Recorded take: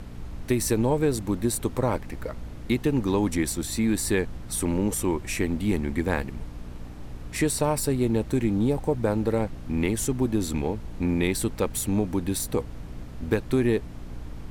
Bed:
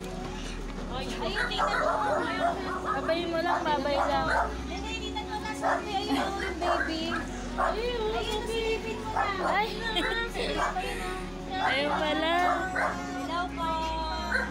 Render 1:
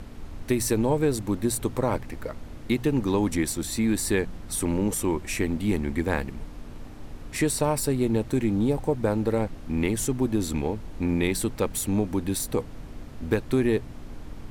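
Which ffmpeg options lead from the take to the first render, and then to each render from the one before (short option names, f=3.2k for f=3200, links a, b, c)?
-af "bandreject=f=60:t=h:w=4,bandreject=f=120:t=h:w=4,bandreject=f=180:t=h:w=4"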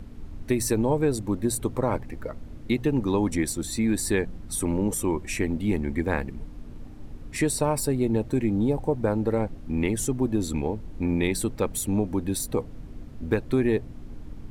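-af "afftdn=nr=8:nf=-41"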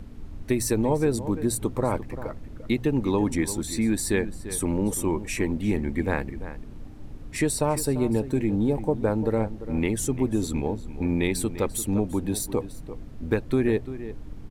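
-filter_complex "[0:a]asplit=2[a][b];[b]adelay=344,volume=-13dB,highshelf=f=4k:g=-7.74[c];[a][c]amix=inputs=2:normalize=0"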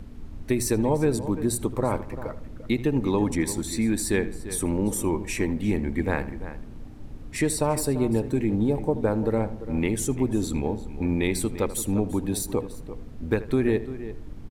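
-filter_complex "[0:a]asplit=2[a][b];[b]adelay=79,lowpass=f=2.5k:p=1,volume=-15dB,asplit=2[c][d];[d]adelay=79,lowpass=f=2.5k:p=1,volume=0.47,asplit=2[e][f];[f]adelay=79,lowpass=f=2.5k:p=1,volume=0.47,asplit=2[g][h];[h]adelay=79,lowpass=f=2.5k:p=1,volume=0.47[i];[a][c][e][g][i]amix=inputs=5:normalize=0"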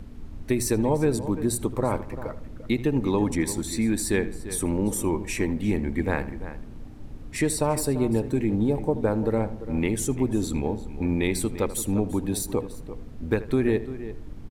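-af anull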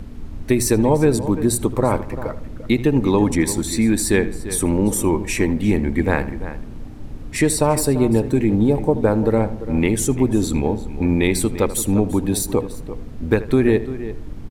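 -af "volume=7dB"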